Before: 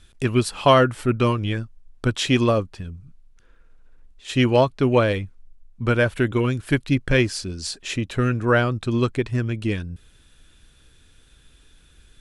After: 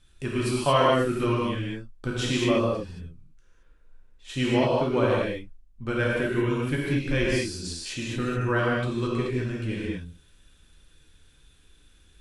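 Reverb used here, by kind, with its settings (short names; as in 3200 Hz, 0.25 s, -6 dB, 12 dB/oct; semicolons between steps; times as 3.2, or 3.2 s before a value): non-linear reverb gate 0.25 s flat, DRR -5.5 dB; gain -10.5 dB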